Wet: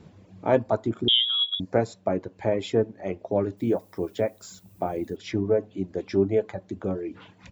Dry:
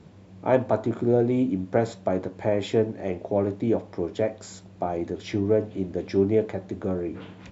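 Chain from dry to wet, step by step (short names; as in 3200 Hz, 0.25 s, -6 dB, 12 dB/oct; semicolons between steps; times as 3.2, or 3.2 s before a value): 1.08–1.6 inverted band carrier 3600 Hz; reverb removal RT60 1.1 s; 3.57–5.15 added noise violet -62 dBFS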